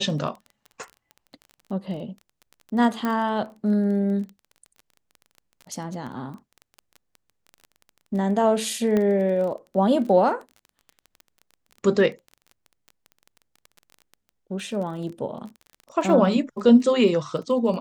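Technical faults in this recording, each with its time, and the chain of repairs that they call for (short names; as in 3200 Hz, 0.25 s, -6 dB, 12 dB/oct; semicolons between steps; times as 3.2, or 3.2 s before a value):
crackle 20/s -33 dBFS
3.05 pop -14 dBFS
8.97 pop -13 dBFS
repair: de-click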